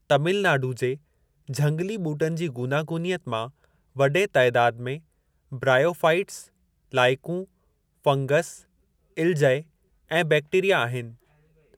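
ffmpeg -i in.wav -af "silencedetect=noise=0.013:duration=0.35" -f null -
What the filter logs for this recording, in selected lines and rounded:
silence_start: 0.96
silence_end: 1.49 | silence_duration: 0.53
silence_start: 3.49
silence_end: 3.96 | silence_duration: 0.47
silence_start: 4.98
silence_end: 5.52 | silence_duration: 0.54
silence_start: 6.43
silence_end: 6.93 | silence_duration: 0.50
silence_start: 7.44
silence_end: 8.05 | silence_duration: 0.60
silence_start: 8.58
silence_end: 9.17 | silence_duration: 0.59
silence_start: 9.62
silence_end: 10.11 | silence_duration: 0.49
silence_start: 11.11
silence_end: 11.77 | silence_duration: 0.66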